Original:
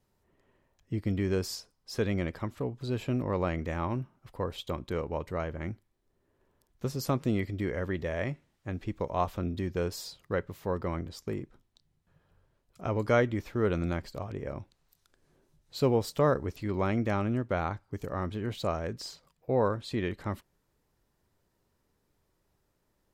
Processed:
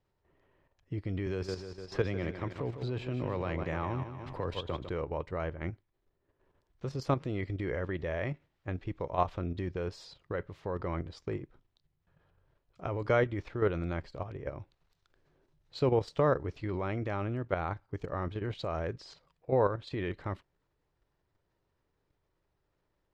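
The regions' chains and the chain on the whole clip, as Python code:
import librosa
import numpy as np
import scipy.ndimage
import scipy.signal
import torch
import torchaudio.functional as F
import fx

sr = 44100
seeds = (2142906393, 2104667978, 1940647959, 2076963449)

y = fx.chain(x, sr, fx.echo_feedback(ms=152, feedback_pct=42, wet_db=-9.5),
    fx.band_squash(depth_pct=70), at=(1.26, 4.89))
y = scipy.signal.sosfilt(scipy.signal.butter(2, 3900.0, 'lowpass', fs=sr, output='sos'), y)
y = fx.peak_eq(y, sr, hz=220.0, db=-10.0, octaves=0.32)
y = fx.level_steps(y, sr, step_db=9)
y = F.gain(torch.from_numpy(y), 2.5).numpy()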